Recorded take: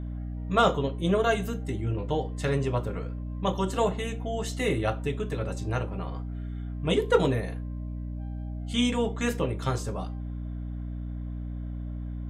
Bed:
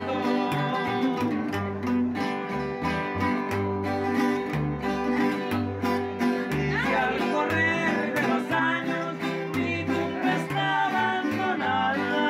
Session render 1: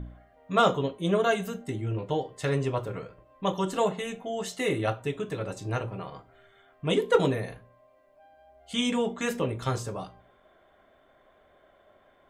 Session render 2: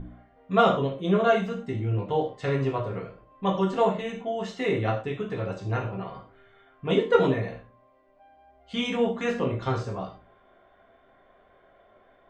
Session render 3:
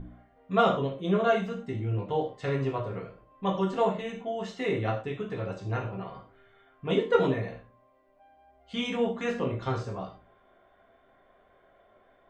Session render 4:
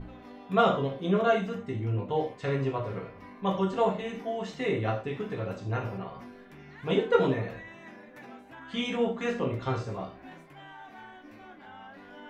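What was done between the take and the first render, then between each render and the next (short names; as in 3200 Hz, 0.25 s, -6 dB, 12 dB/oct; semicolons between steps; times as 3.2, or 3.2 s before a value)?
de-hum 60 Hz, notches 5
air absorption 170 m; non-linear reverb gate 0.14 s falling, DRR 0 dB
gain -3 dB
add bed -23 dB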